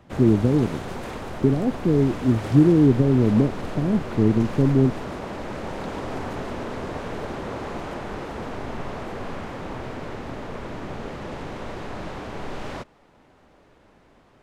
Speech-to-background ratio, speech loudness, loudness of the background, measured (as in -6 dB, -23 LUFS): 13.0 dB, -20.5 LUFS, -33.5 LUFS